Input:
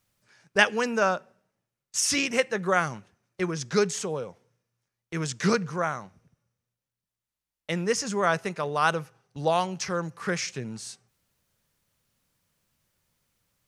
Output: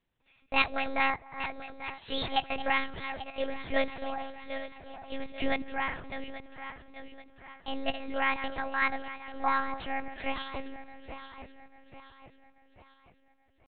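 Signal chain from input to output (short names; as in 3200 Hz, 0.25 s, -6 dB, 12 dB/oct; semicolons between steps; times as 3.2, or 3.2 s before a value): regenerating reverse delay 0.418 s, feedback 66%, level -10 dB; pitch shift +7 st; band-limited delay 0.26 s, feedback 55%, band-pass 780 Hz, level -23 dB; monotone LPC vocoder at 8 kHz 270 Hz; gain -4 dB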